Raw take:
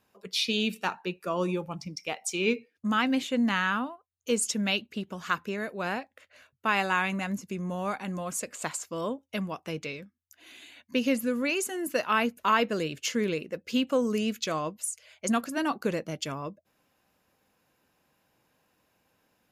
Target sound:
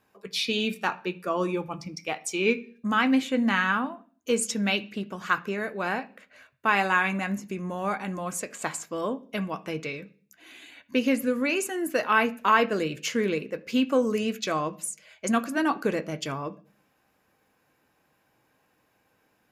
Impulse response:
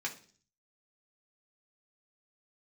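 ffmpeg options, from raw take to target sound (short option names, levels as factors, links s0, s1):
-filter_complex "[0:a]asplit=2[s0][s1];[1:a]atrim=start_sample=2205,lowpass=3500[s2];[s1][s2]afir=irnorm=-1:irlink=0,volume=0.531[s3];[s0][s3]amix=inputs=2:normalize=0"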